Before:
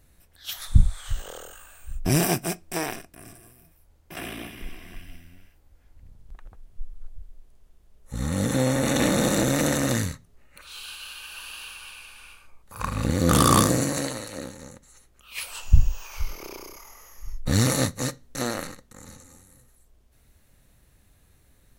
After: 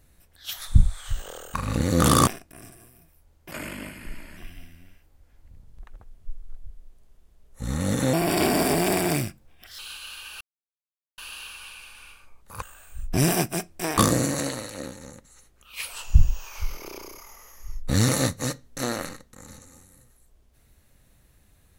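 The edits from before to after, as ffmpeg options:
-filter_complex "[0:a]asplit=10[a][b][c][d][e][f][g][h][i][j];[a]atrim=end=1.542[k];[b]atrim=start=12.828:end=13.562[l];[c]atrim=start=2.898:end=4.144[m];[d]atrim=start=4.14:end=4.89,asetpts=PTS-STARTPTS,asetrate=38367,aresample=44100,atrim=end_sample=38017,asetpts=PTS-STARTPTS[n];[e]atrim=start=4.886:end=8.654[o];[f]atrim=start=8.65:end=10.77,asetpts=PTS-STARTPTS,asetrate=56448,aresample=44100[p];[g]atrim=start=10.766:end=11.39,asetpts=PTS-STARTPTS,afade=t=out:st=0.62:d=0.004:c=hsin,apad=pad_dur=0.77[q];[h]atrim=start=11.39:end=12.832,asetpts=PTS-STARTPTS,afade=t=in:d=0.004:c=hsin[r];[i]atrim=start=1.538:end=2.902[s];[j]atrim=start=13.558[t];[k][l]acrossfade=d=0.004:c1=hsin:c2=hsin[u];[u][m]acrossfade=d=0.004:c1=hsin:c2=hsin[v];[v][n]acrossfade=d=0.004:c1=hsin:c2=hsin[w];[w][o]acrossfade=d=0.004:c1=hsin:c2=hsin[x];[x][p]acrossfade=d=0.004:c1=hsin:c2=hsin[y];[q][r]concat=n=2:v=0:a=1[z];[y][z]acrossfade=d=0.004:c1=hsin:c2=hsin[aa];[aa][s]acrossfade=d=0.004:c1=hsin:c2=hsin[ab];[ab][t]acrossfade=d=0.004:c1=hsin:c2=hsin"

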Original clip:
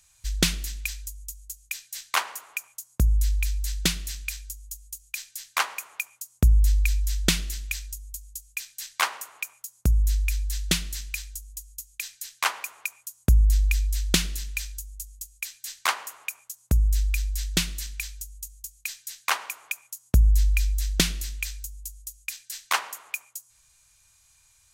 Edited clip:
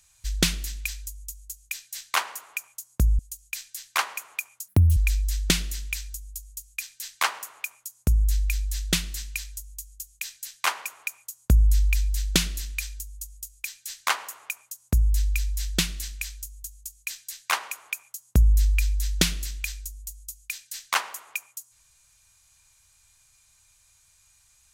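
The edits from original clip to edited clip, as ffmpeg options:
-filter_complex "[0:a]asplit=4[a][b][c][d];[a]atrim=end=3.192[e];[b]atrim=start=4.798:end=6.294[f];[c]atrim=start=6.29:end=6.75,asetpts=PTS-STARTPTS,asetrate=71001,aresample=44100[g];[d]atrim=start=6.746[h];[e][f]acrossfade=d=0.004:c1=hsin:c2=hsin[i];[i][g]acrossfade=d=0.004:c1=hsin:c2=hsin[j];[j][h]acrossfade=d=0.004:c1=hsin:c2=hsin"

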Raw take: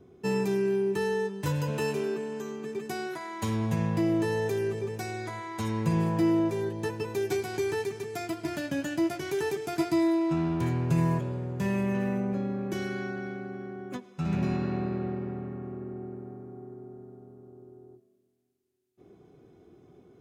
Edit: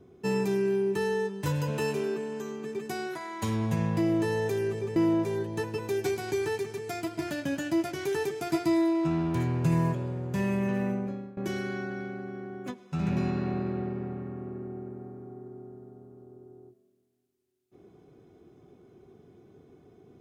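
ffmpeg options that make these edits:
-filter_complex "[0:a]asplit=3[a][b][c];[a]atrim=end=4.962[d];[b]atrim=start=6.218:end=12.63,asetpts=PTS-STARTPTS,afade=t=out:st=5.942:d=0.47:silence=0.112202[e];[c]atrim=start=12.63,asetpts=PTS-STARTPTS,afade=t=in:d=0.004:c=hsin:silence=0.112202[f];[e][f]concat=n=2:v=0:a=1[g];[d][g]acrossfade=d=0.004:c1=hsin:c2=hsin"

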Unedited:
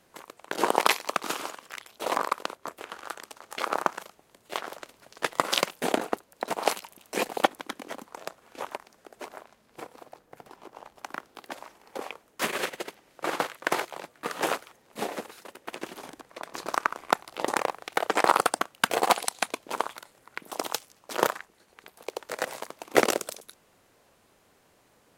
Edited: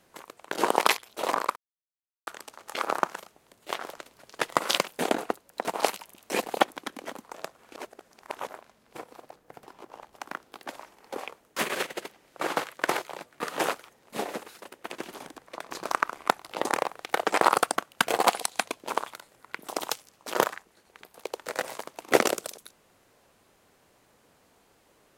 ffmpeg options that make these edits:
-filter_complex "[0:a]asplit=6[a][b][c][d][e][f];[a]atrim=end=0.972[g];[b]atrim=start=1.798:end=2.39,asetpts=PTS-STARTPTS,afade=t=out:st=0.588:d=0.004:c=hsin[h];[c]atrim=start=2.39:end=3.1,asetpts=PTS-STARTPTS,volume=0[i];[d]atrim=start=3.1:end=8.592,asetpts=PTS-STARTPTS,afade=t=in:d=0.004:c=hsin[j];[e]atrim=start=8.588:end=9.302,asetpts=PTS-STARTPTS,areverse[k];[f]atrim=start=9.298[l];[h][i][j]concat=n=3:v=0:a=1[m];[g][m]acrossfade=d=0.004:c1=hsin:c2=hsin[n];[n][k]acrossfade=d=0.004:c1=hsin:c2=hsin[o];[o][l]acrossfade=d=0.004:c1=hsin:c2=hsin"

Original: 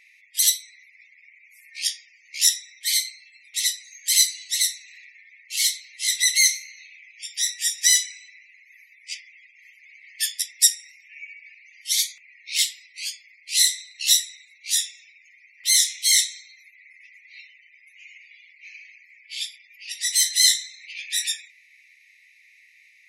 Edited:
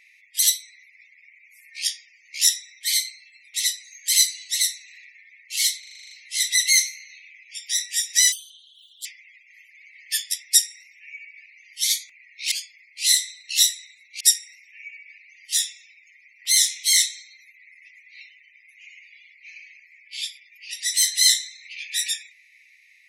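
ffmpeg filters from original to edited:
-filter_complex "[0:a]asplit=14[a][b][c][d][e][f][g][h][i][j][k][l][m][n];[a]atrim=end=5.832[o];[b]atrim=start=5.788:end=5.832[p];[c]atrim=start=5.788:end=5.832[q];[d]atrim=start=5.788:end=5.832[r];[e]atrim=start=5.788:end=5.832[s];[f]atrim=start=5.788:end=5.832[t];[g]atrim=start=5.788:end=5.832[u];[h]atrim=start=5.788:end=5.832[v];[i]atrim=start=5.788:end=8.004[w];[j]atrim=start=8:end=9.14,asetpts=PTS-STARTPTS,asetrate=68355,aresample=44100[x];[k]atrim=start=9.136:end=12.602[y];[l]atrim=start=13.018:end=14.712[z];[m]atrim=start=10.568:end=11.892[aa];[n]atrim=start=14.708[ab];[o][p]acrossfade=d=0.004:c1=hsin:c2=hsin[ac];[ac][q]acrossfade=d=0.004:c1=hsin:c2=hsin[ad];[ad][r]acrossfade=d=0.004:c1=hsin:c2=hsin[ae];[ae][s]acrossfade=d=0.004:c1=hsin:c2=hsin[af];[af][t]acrossfade=d=0.004:c1=hsin:c2=hsin[ag];[ag][u]acrossfade=d=0.004:c1=hsin:c2=hsin[ah];[ah][v]acrossfade=d=0.004:c1=hsin:c2=hsin[ai];[ai][w]acrossfade=d=0.004:c1=hsin:c2=hsin[aj];[aj][x]acrossfade=d=0.004:c1=hsin:c2=hsin[ak];[ak][y]acrossfade=d=0.004:c1=hsin:c2=hsin[al];[al][z]acrossfade=d=0.004:c1=hsin:c2=hsin[am];[am][aa]acrossfade=d=0.004:c1=hsin:c2=hsin[an];[an][ab]acrossfade=d=0.004:c1=hsin:c2=hsin"

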